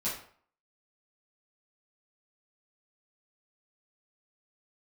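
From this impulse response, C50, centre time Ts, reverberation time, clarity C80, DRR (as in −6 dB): 5.0 dB, 37 ms, 0.50 s, 9.0 dB, −10.0 dB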